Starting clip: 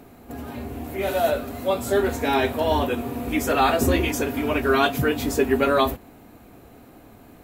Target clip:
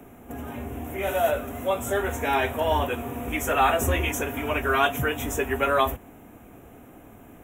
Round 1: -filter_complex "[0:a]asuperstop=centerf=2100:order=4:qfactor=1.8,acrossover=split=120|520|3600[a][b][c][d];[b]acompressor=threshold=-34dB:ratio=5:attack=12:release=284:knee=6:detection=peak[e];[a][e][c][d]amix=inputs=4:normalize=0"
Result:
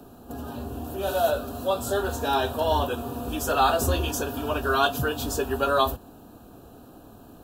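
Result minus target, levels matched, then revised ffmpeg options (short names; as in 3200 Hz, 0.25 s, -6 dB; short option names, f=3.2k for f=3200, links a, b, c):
2000 Hz band -3.5 dB
-filter_complex "[0:a]asuperstop=centerf=4500:order=4:qfactor=1.8,acrossover=split=120|520|3600[a][b][c][d];[b]acompressor=threshold=-34dB:ratio=5:attack=12:release=284:knee=6:detection=peak[e];[a][e][c][d]amix=inputs=4:normalize=0"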